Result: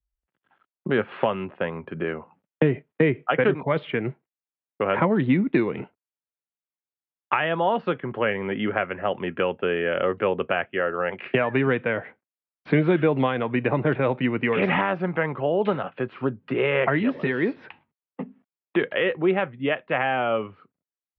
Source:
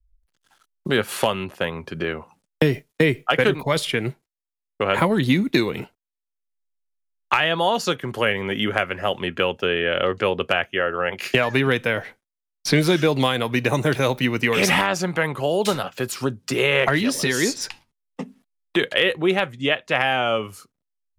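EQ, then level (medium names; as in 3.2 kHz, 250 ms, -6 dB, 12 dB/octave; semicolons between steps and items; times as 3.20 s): high-pass 130 Hz; low-pass 3.1 kHz 24 dB/octave; distance through air 480 m; 0.0 dB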